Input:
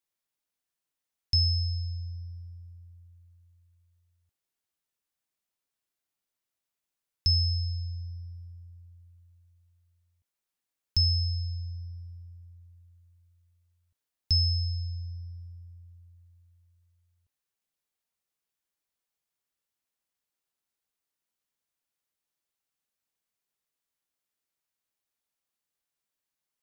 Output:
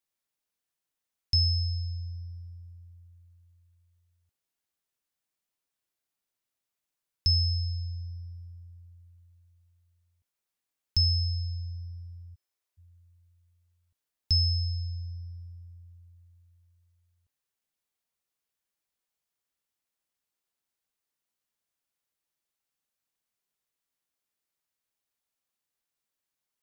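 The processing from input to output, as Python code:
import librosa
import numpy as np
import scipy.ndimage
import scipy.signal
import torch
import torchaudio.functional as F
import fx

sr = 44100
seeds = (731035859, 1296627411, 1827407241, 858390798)

y = fx.steep_highpass(x, sr, hz=300.0, slope=36, at=(12.34, 12.77), fade=0.02)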